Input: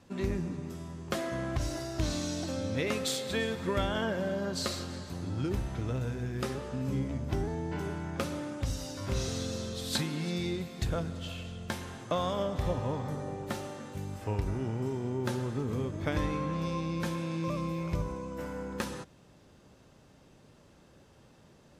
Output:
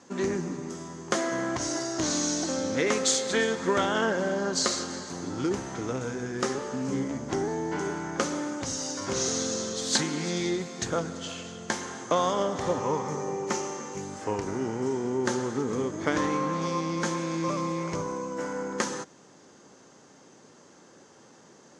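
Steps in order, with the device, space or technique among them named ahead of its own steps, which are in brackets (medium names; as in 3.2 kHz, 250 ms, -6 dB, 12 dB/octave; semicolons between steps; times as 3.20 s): full-range speaker at full volume (loudspeaker Doppler distortion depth 0.21 ms; cabinet simulation 270–8300 Hz, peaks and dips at 610 Hz -5 dB, 2.6 kHz -7 dB, 3.7 kHz -5 dB, 6.5 kHz +9 dB); 12.80–14.01 s: rippled EQ curve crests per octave 0.78, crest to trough 7 dB; trim +8.5 dB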